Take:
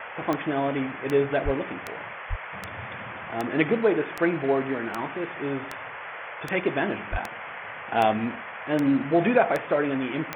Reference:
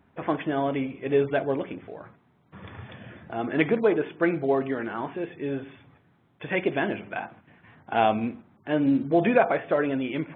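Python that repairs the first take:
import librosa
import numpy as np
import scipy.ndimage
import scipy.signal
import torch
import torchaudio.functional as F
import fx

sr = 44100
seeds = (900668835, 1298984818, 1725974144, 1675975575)

y = fx.fix_declick_ar(x, sr, threshold=10.0)
y = fx.highpass(y, sr, hz=140.0, slope=24, at=(1.44, 1.56), fade=0.02)
y = fx.highpass(y, sr, hz=140.0, slope=24, at=(2.29, 2.41), fade=0.02)
y = fx.highpass(y, sr, hz=140.0, slope=24, at=(7.11, 7.23), fade=0.02)
y = fx.noise_reduce(y, sr, print_start_s=5.88, print_end_s=6.38, reduce_db=21.0)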